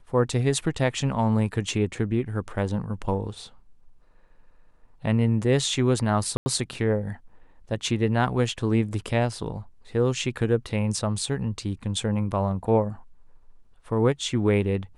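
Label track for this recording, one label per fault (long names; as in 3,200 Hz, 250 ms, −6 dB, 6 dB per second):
6.370000	6.460000	drop-out 90 ms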